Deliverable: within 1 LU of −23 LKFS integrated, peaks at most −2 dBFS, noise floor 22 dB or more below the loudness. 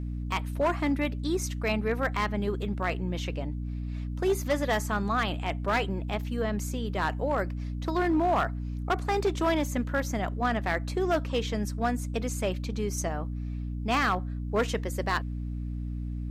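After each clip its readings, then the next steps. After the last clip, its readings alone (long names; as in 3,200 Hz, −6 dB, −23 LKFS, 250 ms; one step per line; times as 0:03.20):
share of clipped samples 1.1%; peaks flattened at −19.5 dBFS; mains hum 60 Hz; hum harmonics up to 300 Hz; level of the hum −31 dBFS; integrated loudness −29.5 LKFS; sample peak −19.5 dBFS; target loudness −23.0 LKFS
→ clipped peaks rebuilt −19.5 dBFS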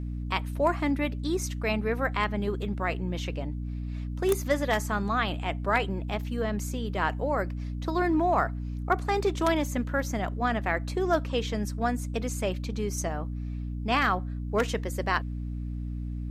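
share of clipped samples 0.0%; mains hum 60 Hz; hum harmonics up to 300 Hz; level of the hum −31 dBFS
→ mains-hum notches 60/120/180/240/300 Hz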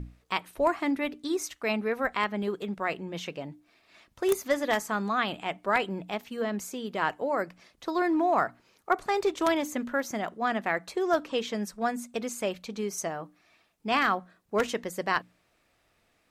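mains hum none found; integrated loudness −30.0 LKFS; sample peak −10.0 dBFS; target loudness −23.0 LKFS
→ level +7 dB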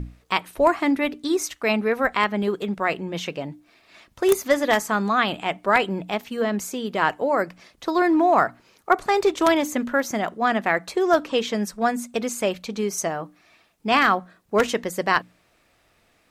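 integrated loudness −23.0 LKFS; sample peak −3.0 dBFS; background noise floor −63 dBFS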